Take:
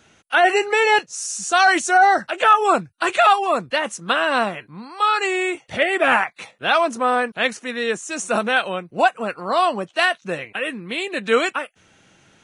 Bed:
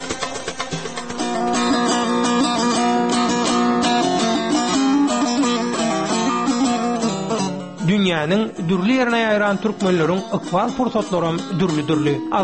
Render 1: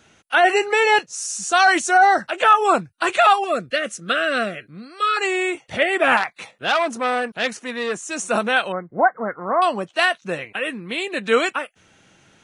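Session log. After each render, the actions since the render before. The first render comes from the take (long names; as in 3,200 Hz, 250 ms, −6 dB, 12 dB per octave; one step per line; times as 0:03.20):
0:03.44–0:05.17: Chebyshev band-stop filter 650–1,300 Hz
0:06.17–0:08.11: saturating transformer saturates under 1,900 Hz
0:08.72–0:09.62: linear-phase brick-wall low-pass 2,200 Hz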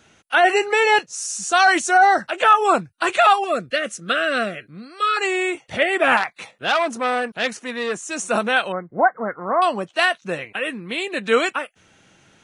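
no processing that can be heard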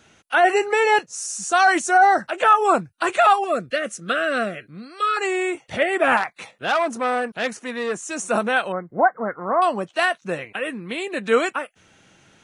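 dynamic equaliser 3,500 Hz, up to −6 dB, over −35 dBFS, Q 0.83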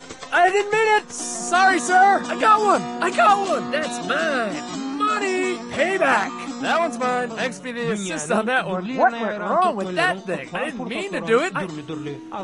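mix in bed −12 dB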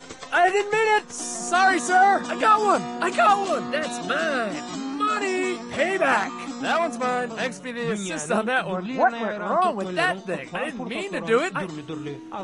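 level −2.5 dB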